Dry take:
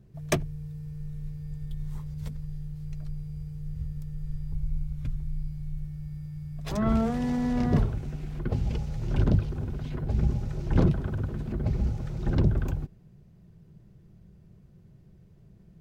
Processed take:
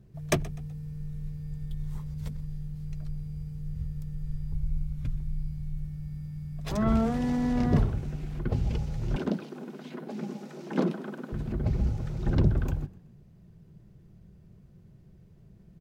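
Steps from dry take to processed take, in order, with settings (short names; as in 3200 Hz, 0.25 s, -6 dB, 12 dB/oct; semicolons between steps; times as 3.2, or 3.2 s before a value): 9.16–11.32 brick-wall FIR high-pass 170 Hz; frequency-shifting echo 0.125 s, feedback 34%, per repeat +42 Hz, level -20.5 dB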